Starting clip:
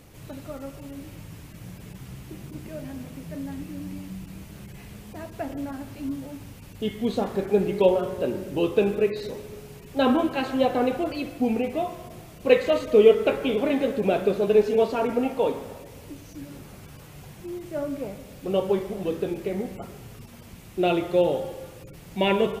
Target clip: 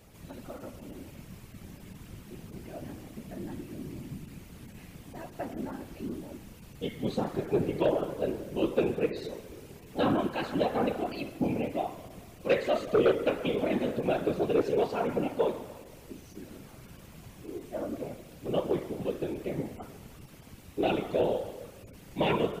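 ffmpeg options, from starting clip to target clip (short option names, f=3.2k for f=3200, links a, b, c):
-af "afftfilt=real='hypot(re,im)*cos(2*PI*random(0))':imag='hypot(re,im)*sin(2*PI*random(1))':win_size=512:overlap=0.75,aeval=exprs='0.355*sin(PI/2*1.78*val(0)/0.355)':c=same,volume=-8dB"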